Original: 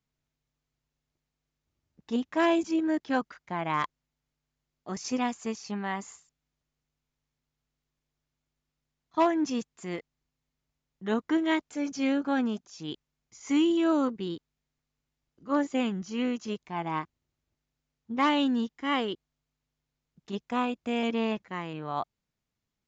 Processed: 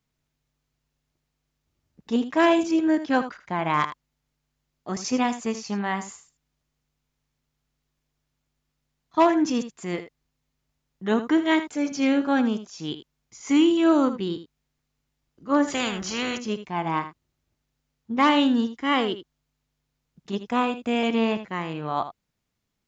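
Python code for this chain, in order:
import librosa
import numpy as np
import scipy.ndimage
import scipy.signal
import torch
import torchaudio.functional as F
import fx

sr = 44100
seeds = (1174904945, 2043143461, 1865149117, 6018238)

y = x + 10.0 ** (-12.0 / 20.0) * np.pad(x, (int(79 * sr / 1000.0), 0))[:len(x)]
y = fx.spectral_comp(y, sr, ratio=2.0, at=(15.67, 16.38), fade=0.02)
y = y * 10.0 ** (5.5 / 20.0)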